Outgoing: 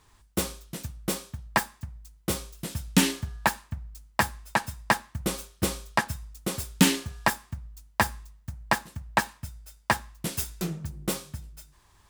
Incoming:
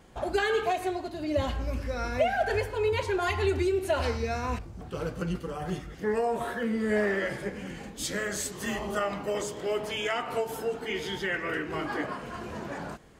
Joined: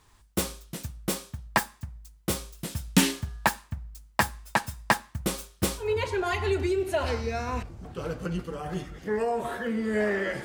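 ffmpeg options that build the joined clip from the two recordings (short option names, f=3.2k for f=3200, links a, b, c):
-filter_complex "[0:a]apad=whole_dur=10.44,atrim=end=10.44,atrim=end=5.91,asetpts=PTS-STARTPTS[a];[1:a]atrim=start=2.71:end=7.4,asetpts=PTS-STARTPTS[b];[a][b]acrossfade=d=0.16:c1=tri:c2=tri"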